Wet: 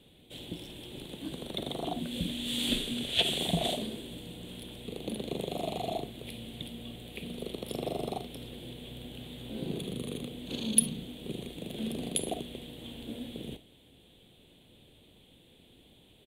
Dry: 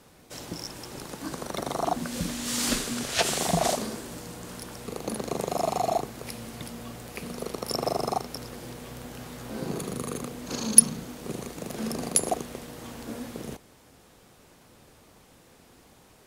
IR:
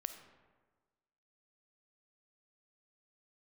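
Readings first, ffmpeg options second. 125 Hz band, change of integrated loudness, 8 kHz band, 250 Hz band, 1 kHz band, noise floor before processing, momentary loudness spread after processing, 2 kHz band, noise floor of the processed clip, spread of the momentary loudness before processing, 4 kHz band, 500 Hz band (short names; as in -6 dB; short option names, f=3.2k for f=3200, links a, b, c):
-3.0 dB, -6.5 dB, -10.0 dB, -2.5 dB, -11.0 dB, -56 dBFS, 16 LU, -6.0 dB, -60 dBFS, 15 LU, +1.0 dB, -6.0 dB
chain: -filter_complex "[0:a]firequalizer=gain_entry='entry(340,0);entry(1200,-17);entry(3400,11);entry(5200,-23);entry(8400,-7)':delay=0.05:min_phase=1[a];[1:a]atrim=start_sample=2205,atrim=end_sample=3087[b];[a][b]afir=irnorm=-1:irlink=0"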